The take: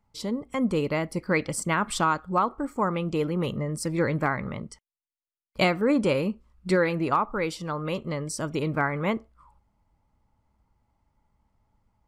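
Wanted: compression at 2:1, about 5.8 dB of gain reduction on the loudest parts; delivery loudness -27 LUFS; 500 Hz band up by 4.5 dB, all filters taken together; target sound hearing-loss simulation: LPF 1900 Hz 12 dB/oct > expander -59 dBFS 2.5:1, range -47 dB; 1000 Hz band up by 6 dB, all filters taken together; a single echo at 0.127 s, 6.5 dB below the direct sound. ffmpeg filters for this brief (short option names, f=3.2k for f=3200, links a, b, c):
-af "equalizer=f=500:t=o:g=3.5,equalizer=f=1k:t=o:g=7,acompressor=threshold=-23dB:ratio=2,lowpass=1.9k,aecho=1:1:127:0.473,agate=range=-47dB:threshold=-59dB:ratio=2.5,volume=-0.5dB"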